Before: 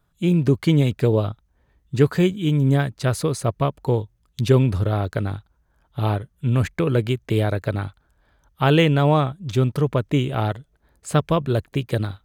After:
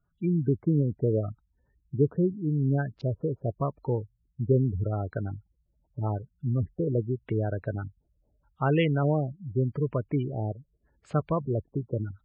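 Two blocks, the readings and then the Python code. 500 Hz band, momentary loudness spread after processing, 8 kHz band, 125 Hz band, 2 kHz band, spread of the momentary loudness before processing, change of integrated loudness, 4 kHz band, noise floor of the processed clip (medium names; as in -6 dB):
-7.0 dB, 10 LU, under -30 dB, -7.5 dB, -11.5 dB, 10 LU, -7.5 dB, -17.0 dB, -74 dBFS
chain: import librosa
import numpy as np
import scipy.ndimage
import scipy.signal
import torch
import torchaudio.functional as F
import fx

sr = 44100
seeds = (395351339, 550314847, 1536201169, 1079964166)

y = fx.filter_lfo_lowpass(x, sr, shape='square', hz=0.83, low_hz=580.0, high_hz=3000.0, q=0.97)
y = fx.spec_gate(y, sr, threshold_db=-20, keep='strong')
y = y * librosa.db_to_amplitude(-7.5)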